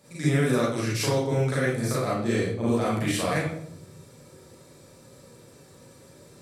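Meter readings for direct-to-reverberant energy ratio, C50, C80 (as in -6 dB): -8.0 dB, 0.0 dB, 5.0 dB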